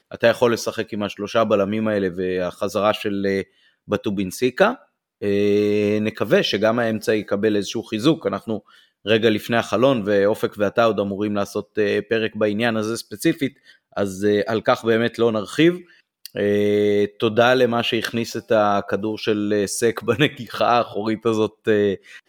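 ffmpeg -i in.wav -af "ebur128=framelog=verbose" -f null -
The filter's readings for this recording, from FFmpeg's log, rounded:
Integrated loudness:
  I:         -20.5 LUFS
  Threshold: -30.8 LUFS
Loudness range:
  LRA:         2.8 LU
  Threshold: -40.8 LUFS
  LRA low:   -22.3 LUFS
  LRA high:  -19.5 LUFS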